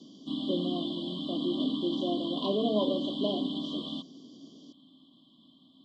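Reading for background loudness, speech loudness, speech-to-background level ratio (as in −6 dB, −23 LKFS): −34.5 LKFS, −33.5 LKFS, 1.0 dB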